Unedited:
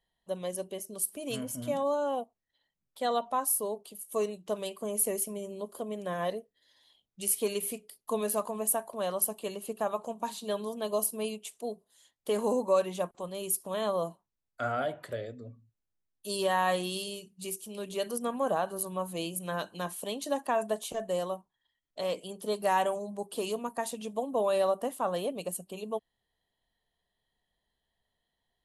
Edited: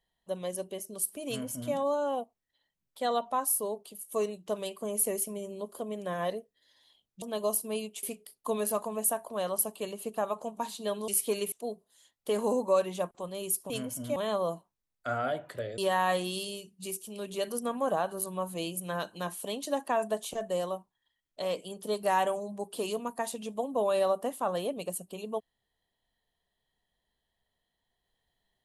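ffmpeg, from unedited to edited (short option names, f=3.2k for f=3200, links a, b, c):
-filter_complex "[0:a]asplit=8[a][b][c][d][e][f][g][h];[a]atrim=end=7.222[i];[b]atrim=start=10.708:end=11.522[j];[c]atrim=start=7.658:end=10.712[k];[d]atrim=start=7.218:end=7.662[l];[e]atrim=start=11.518:end=13.702[m];[f]atrim=start=1.278:end=1.742[n];[g]atrim=start=13.698:end=15.322[o];[h]atrim=start=16.368[p];[i][j]acrossfade=d=0.004:c1=hsin:c2=hsin[q];[q][k]acrossfade=d=0.004:c1=hsin:c2=hsin[r];[r][l]acrossfade=d=0.004:c1=hsin:c2=hsin[s];[s][m]acrossfade=d=0.004:c1=hsin:c2=hsin[t];[t][n]acrossfade=d=0.004:c1=hsin:c2=hsin[u];[u][o]acrossfade=d=0.004:c1=hsin:c2=hsin[v];[v][p]acrossfade=d=0.004:c1=hsin:c2=hsin"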